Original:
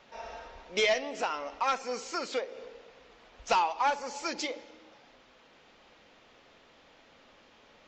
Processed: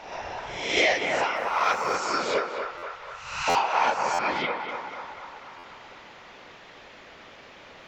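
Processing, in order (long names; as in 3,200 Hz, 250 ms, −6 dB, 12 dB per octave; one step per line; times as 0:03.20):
peak hold with a rise ahead of every peak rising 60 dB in 0.67 s
0:04.14–0:04.69: low-pass filter 3,500 Hz 24 dB per octave
parametric band 2,000 Hz +4 dB 0.67 octaves
0:02.61–0:03.48: inverse Chebyshev band-stop filter 200–650 Hz, stop band 40 dB
in parallel at +2.5 dB: downward compressor, threshold −42 dBFS, peak gain reduction 21 dB
on the sum: random phases in short frames
on a send: feedback echo with a band-pass in the loop 244 ms, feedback 70%, band-pass 1,100 Hz, level −4.5 dB
0:01.36–0:01.96: on the sum: slack as between gear wheels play −46.5 dBFS
buffer that repeats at 0:02.77/0:03.49/0:04.13/0:05.58, samples 512, times 4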